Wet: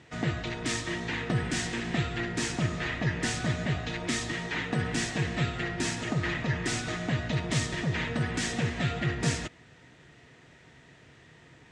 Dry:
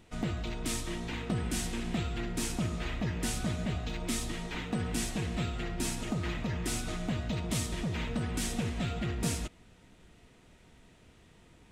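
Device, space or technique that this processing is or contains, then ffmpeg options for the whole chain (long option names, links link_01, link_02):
car door speaker: -af "highpass=100,equalizer=frequency=140:width_type=q:width=4:gain=7,equalizer=frequency=200:width_type=q:width=4:gain=-8,equalizer=frequency=1800:width_type=q:width=4:gain=9,lowpass=frequency=7500:width=0.5412,lowpass=frequency=7500:width=1.3066,volume=4.5dB"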